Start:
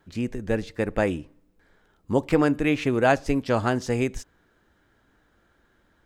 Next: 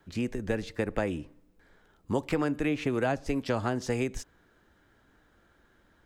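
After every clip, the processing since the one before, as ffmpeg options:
ffmpeg -i in.wav -filter_complex "[0:a]acrossover=split=290|960[link_01][link_02][link_03];[link_01]acompressor=threshold=-32dB:ratio=4[link_04];[link_02]acompressor=threshold=-30dB:ratio=4[link_05];[link_03]acompressor=threshold=-36dB:ratio=4[link_06];[link_04][link_05][link_06]amix=inputs=3:normalize=0" out.wav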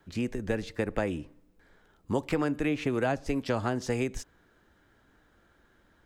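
ffmpeg -i in.wav -af anull out.wav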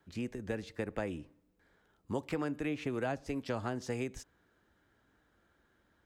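ffmpeg -i in.wav -af "highpass=42,volume=-7dB" out.wav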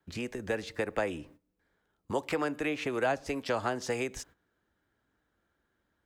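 ffmpeg -i in.wav -filter_complex "[0:a]agate=range=-14dB:threshold=-59dB:ratio=16:detection=peak,acrossover=split=380[link_01][link_02];[link_01]acompressor=threshold=-48dB:ratio=6[link_03];[link_03][link_02]amix=inputs=2:normalize=0,volume=8dB" out.wav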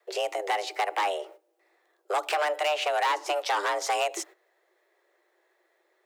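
ffmpeg -i in.wav -af "asoftclip=type=hard:threshold=-29.5dB,afreqshift=300,volume=7.5dB" out.wav

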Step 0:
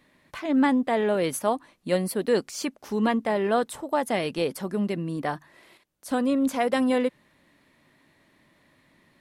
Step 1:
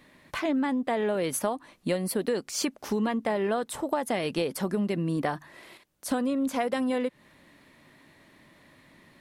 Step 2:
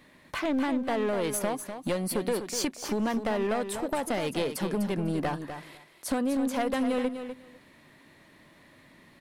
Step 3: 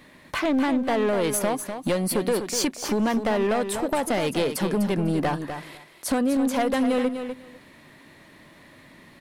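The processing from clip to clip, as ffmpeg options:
ffmpeg -i in.wav -af "acompressor=threshold=-29dB:ratio=12,volume=5dB" out.wav
ffmpeg -i in.wav -af "aeval=exprs='clip(val(0),-1,0.0447)':channel_layout=same,aecho=1:1:249|498:0.355|0.0568" out.wav
ffmpeg -i in.wav -af "asoftclip=type=tanh:threshold=-18.5dB,volume=6dB" out.wav

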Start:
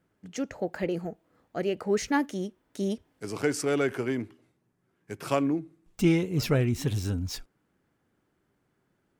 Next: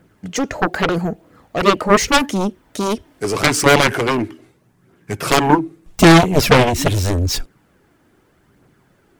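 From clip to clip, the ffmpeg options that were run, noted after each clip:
ffmpeg -i in.wav -af "aphaser=in_gain=1:out_gain=1:delay=3.4:decay=0.36:speed=0.81:type=triangular,aeval=exprs='0.316*(cos(1*acos(clip(val(0)/0.316,-1,1)))-cos(1*PI/2))+0.0794*(cos(7*acos(clip(val(0)/0.316,-1,1)))-cos(7*PI/2))':channel_layout=same,aeval=exprs='0.398*sin(PI/2*2.51*val(0)/0.398)':channel_layout=same,volume=7dB" out.wav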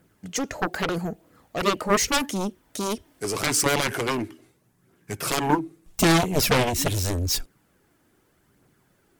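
ffmpeg -i in.wav -af "aemphasis=mode=production:type=cd,alimiter=level_in=0.5dB:limit=-1dB:release=50:level=0:latency=1,volume=-8.5dB" out.wav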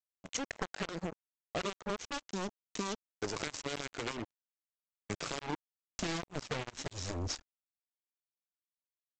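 ffmpeg -i in.wav -af "acompressor=threshold=-30dB:ratio=16,aresample=16000,acrusher=bits=4:mix=0:aa=0.5,aresample=44100,volume=-3.5dB" out.wav

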